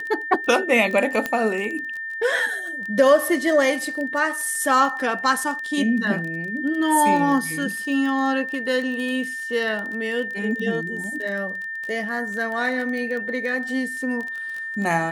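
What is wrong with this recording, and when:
surface crackle 17 per second −27 dBFS
whistle 1,800 Hz −28 dBFS
0:01.26: click −9 dBFS

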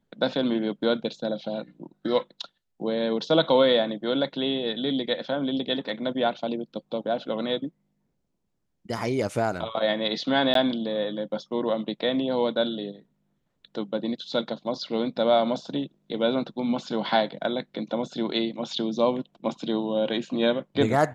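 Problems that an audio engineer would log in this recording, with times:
0:10.54–0:10.55: drop-out 13 ms

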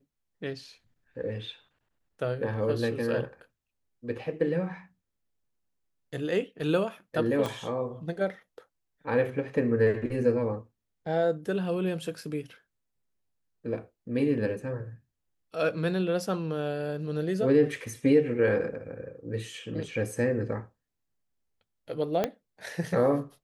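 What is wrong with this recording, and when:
0:07.46: click −18 dBFS
0:22.24: click −13 dBFS

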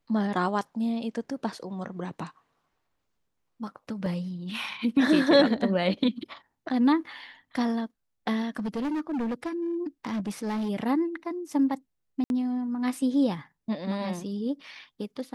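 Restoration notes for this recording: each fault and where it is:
0:04.06: drop-out 2.8 ms
0:08.59–0:10.70: clipping −26.5 dBFS
0:12.24–0:12.30: drop-out 61 ms

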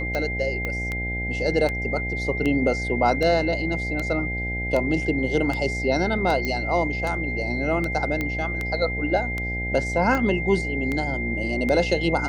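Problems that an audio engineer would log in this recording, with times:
mains buzz 60 Hz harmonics 14 −30 dBFS
scratch tick 78 rpm −14 dBFS
whistle 2,100 Hz −28 dBFS
0:00.65: click −15 dBFS
0:06.45: click −13 dBFS
0:08.21: click −13 dBFS

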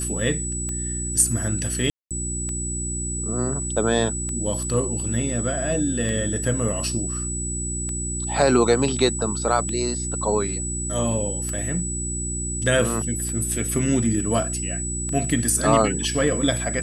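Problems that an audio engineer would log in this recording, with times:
mains hum 60 Hz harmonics 6 −30 dBFS
scratch tick 33 1/3 rpm −18 dBFS
whistle 7,900 Hz −28 dBFS
0:01.90–0:02.11: drop-out 207 ms

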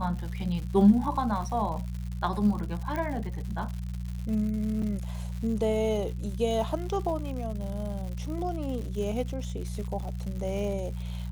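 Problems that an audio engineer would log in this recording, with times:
surface crackle 170 per second −36 dBFS
mains hum 60 Hz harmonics 3 −34 dBFS
0:02.96: click −20 dBFS
0:04.82: drop-out 4.9 ms

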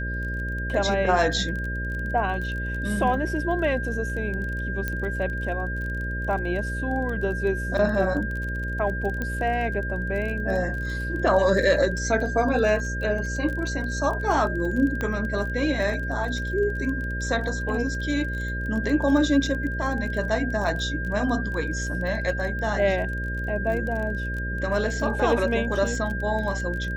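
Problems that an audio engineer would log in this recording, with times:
mains buzz 60 Hz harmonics 10 −30 dBFS
surface crackle 22 per second −31 dBFS
whistle 1,600 Hz −31 dBFS
0:04.88: click −14 dBFS
0:09.22: click −16 dBFS
0:15.01: click −15 dBFS

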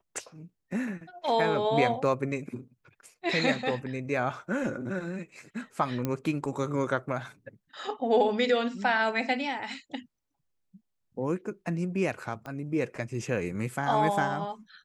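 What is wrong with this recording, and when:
0:06.05: click −16 dBFS
0:12.46: click −26 dBFS

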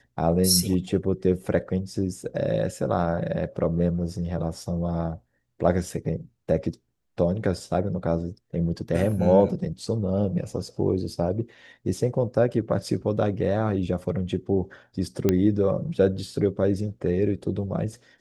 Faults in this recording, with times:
0:15.29: click −8 dBFS

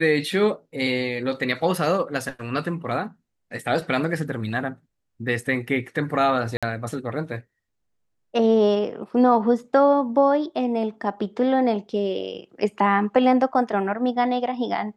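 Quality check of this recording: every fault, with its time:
0:06.57–0:06.63: drop-out 56 ms

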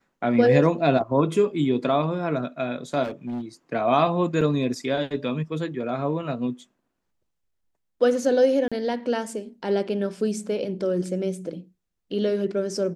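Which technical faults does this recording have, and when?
0:03.03–0:03.42: clipping −27 dBFS
0:04.41–0:04.42: drop-out 5 ms
0:08.68–0:08.72: drop-out 36 ms

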